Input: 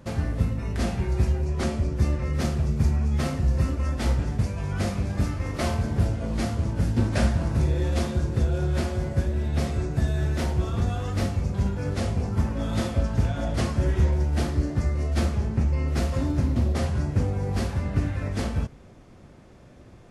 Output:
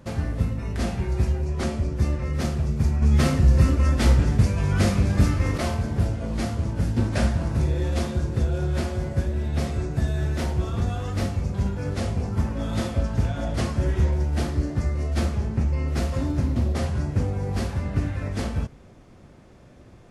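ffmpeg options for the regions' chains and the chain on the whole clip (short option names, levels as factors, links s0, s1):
-filter_complex "[0:a]asettb=1/sr,asplit=3[s0][s1][s2];[s0]atrim=end=3.024[s3];[s1]atrim=start=3.02:end=5.58,asetpts=PTS-STARTPTS,afade=t=in:d=0.004:c=qsin,afade=t=out:st=2.556:d=0.004:c=qsin,equalizer=f=750:w=1.8:g=-3.5,acontrast=67[s4];[s2]atrim=start=5.576[s5];[s3][s4]acrossfade=d=0.004:c1=hsin:c2=qsin[s6];[s6][s5]acrossfade=d=0.004:c1=qsin:c2=hsin"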